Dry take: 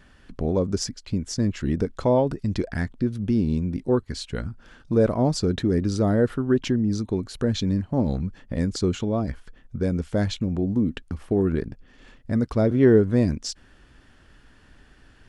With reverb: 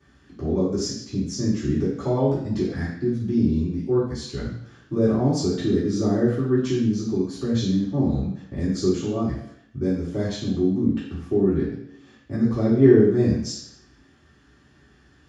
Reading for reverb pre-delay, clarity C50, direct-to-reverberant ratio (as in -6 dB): 3 ms, 3.0 dB, -10.5 dB